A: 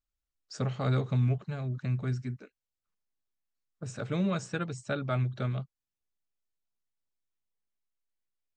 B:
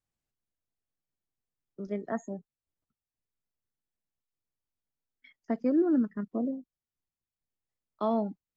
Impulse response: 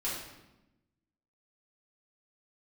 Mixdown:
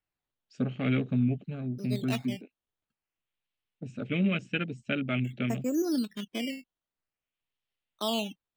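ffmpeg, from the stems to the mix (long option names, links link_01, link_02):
-filter_complex "[0:a]afwtdn=0.00708,equalizer=frequency=100:width_type=o:width=0.67:gain=-6,equalizer=frequency=250:width_type=o:width=0.67:gain=12,equalizer=frequency=1000:width_type=o:width=0.67:gain=-11,equalizer=frequency=2500:width_type=o:width=0.67:gain=11,volume=-2dB[link_01];[1:a]acrusher=samples=12:mix=1:aa=0.000001:lfo=1:lforange=12:lforate=0.49,volume=-3.5dB[link_02];[link_01][link_02]amix=inputs=2:normalize=0,equalizer=frequency=3000:width=1.4:gain=11"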